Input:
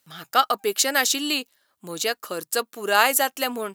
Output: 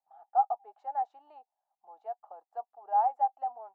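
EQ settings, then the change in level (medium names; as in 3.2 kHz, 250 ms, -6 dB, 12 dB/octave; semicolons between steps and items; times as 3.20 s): Butterworth band-pass 780 Hz, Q 5.2; 0.0 dB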